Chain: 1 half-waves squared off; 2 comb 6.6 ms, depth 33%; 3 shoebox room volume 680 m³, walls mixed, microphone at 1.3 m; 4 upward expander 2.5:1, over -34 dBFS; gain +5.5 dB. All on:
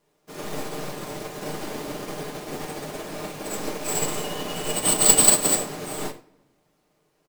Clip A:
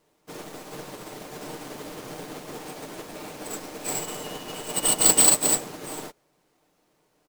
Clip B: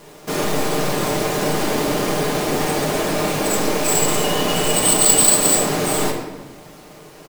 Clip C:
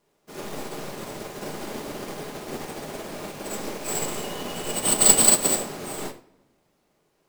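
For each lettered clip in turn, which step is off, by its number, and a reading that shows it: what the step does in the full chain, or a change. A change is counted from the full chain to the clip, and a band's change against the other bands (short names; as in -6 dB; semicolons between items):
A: 3, momentary loudness spread change +4 LU; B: 4, 8 kHz band -6.0 dB; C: 2, momentary loudness spread change +1 LU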